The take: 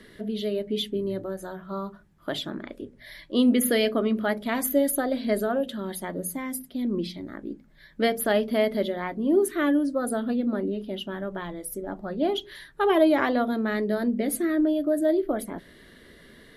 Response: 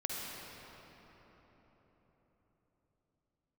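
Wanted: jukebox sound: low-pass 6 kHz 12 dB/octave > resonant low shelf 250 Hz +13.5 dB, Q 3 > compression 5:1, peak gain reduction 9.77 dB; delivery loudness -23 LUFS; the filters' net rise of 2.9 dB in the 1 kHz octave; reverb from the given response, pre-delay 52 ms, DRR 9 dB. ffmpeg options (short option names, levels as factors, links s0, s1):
-filter_complex "[0:a]equalizer=f=1000:t=o:g=6,asplit=2[s0][s1];[1:a]atrim=start_sample=2205,adelay=52[s2];[s1][s2]afir=irnorm=-1:irlink=0,volume=0.237[s3];[s0][s3]amix=inputs=2:normalize=0,lowpass=6000,lowshelf=f=250:t=q:w=3:g=13.5,acompressor=threshold=0.141:ratio=5,volume=0.944"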